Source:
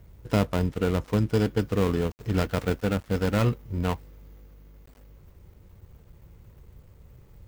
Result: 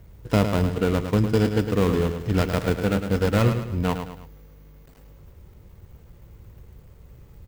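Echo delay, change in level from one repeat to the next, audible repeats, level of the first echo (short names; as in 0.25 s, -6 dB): 0.107 s, -7.5 dB, 3, -8.0 dB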